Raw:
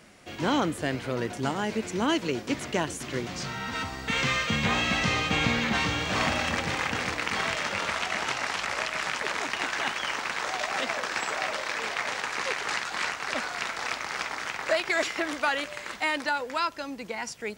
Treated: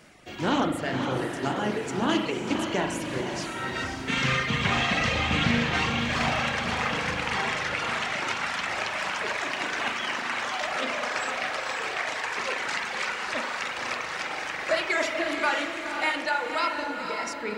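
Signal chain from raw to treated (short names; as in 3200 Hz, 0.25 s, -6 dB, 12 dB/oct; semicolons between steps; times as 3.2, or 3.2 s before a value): spring tank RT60 2.3 s, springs 38 ms, chirp 20 ms, DRR -1 dB; reverb removal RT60 2 s; on a send: diffused feedback echo 0.518 s, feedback 45%, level -5.5 dB; on the sum: Doppler distortion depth 0.27 ms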